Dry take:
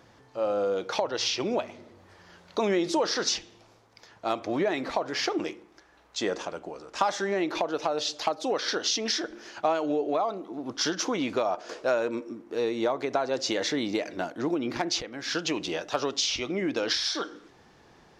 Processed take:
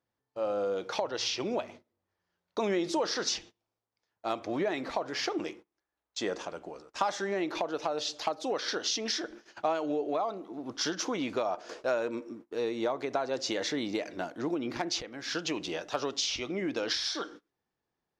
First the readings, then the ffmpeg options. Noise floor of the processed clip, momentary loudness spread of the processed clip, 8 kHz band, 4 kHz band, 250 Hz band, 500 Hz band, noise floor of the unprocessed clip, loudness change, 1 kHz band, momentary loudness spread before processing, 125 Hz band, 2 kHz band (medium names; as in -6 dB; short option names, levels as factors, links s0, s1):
under -85 dBFS, 9 LU, -4.0 dB, -4.0 dB, -4.0 dB, -4.0 dB, -58 dBFS, -4.0 dB, -4.0 dB, 9 LU, -4.0 dB, -4.0 dB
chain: -af "agate=range=0.0501:threshold=0.00708:ratio=16:detection=peak,volume=0.631"